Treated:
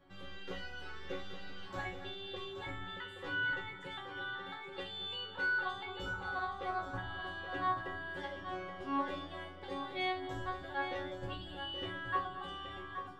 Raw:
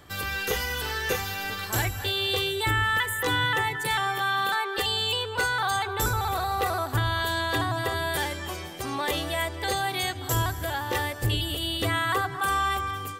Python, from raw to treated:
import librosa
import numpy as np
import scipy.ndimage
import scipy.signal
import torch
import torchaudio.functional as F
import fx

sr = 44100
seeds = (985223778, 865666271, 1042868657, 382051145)

y = fx.spacing_loss(x, sr, db_at_10k=31)
y = fx.resonator_bank(y, sr, root=54, chord='fifth', decay_s=0.36)
y = y + 10.0 ** (-8.5 / 20.0) * np.pad(y, (int(825 * sr / 1000.0), 0))[:len(y)]
y = F.gain(torch.from_numpy(y), 7.0).numpy()